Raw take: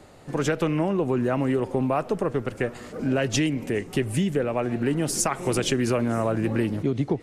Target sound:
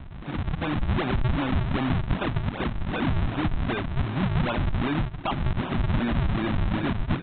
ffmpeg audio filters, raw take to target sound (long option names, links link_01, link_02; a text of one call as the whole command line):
ffmpeg -i in.wav -filter_complex "[0:a]bandreject=frequency=85.09:width_type=h:width=4,bandreject=frequency=170.18:width_type=h:width=4,bandreject=frequency=255.27:width_type=h:width=4,acompressor=threshold=-32dB:ratio=6,aecho=1:1:163|326|489|652|815:0.133|0.0787|0.0464|0.0274|0.0162,asplit=2[link_01][link_02];[link_02]highpass=frequency=720:poles=1,volume=26dB,asoftclip=type=tanh:threshold=-20dB[link_03];[link_01][link_03]amix=inputs=2:normalize=0,lowpass=frequency=1200:poles=1,volume=-6dB,dynaudnorm=framelen=220:gausssize=5:maxgain=6dB,aresample=8000,acrusher=samples=18:mix=1:aa=0.000001:lfo=1:lforange=28.8:lforate=2.6,aresample=44100,lowpass=frequency=2300:poles=1,equalizer=frequency=460:width=2.2:gain=-11.5" out.wav